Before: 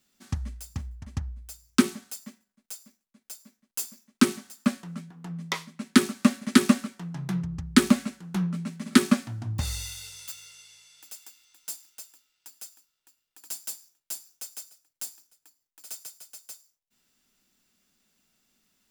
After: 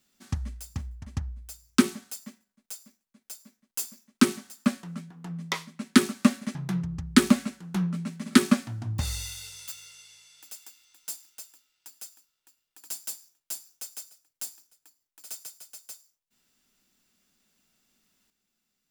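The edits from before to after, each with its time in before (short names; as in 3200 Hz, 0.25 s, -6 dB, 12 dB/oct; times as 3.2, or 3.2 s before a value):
6.55–7.15 cut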